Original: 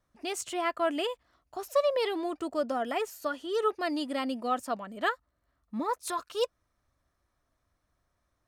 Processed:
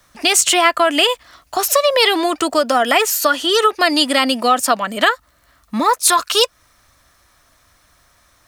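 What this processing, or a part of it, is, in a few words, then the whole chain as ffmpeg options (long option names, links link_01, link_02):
mastering chain: -filter_complex "[0:a]equalizer=frequency=380:width_type=o:width=0.29:gain=-2.5,acrossover=split=170|710[link_01][link_02][link_03];[link_01]acompressor=threshold=-60dB:ratio=4[link_04];[link_02]acompressor=threshold=-30dB:ratio=4[link_05];[link_03]acompressor=threshold=-31dB:ratio=4[link_06];[link_04][link_05][link_06]amix=inputs=3:normalize=0,acompressor=threshold=-35dB:ratio=2,tiltshelf=frequency=1100:gain=-6.5,alimiter=level_in=24dB:limit=-1dB:release=50:level=0:latency=1,volume=-1dB"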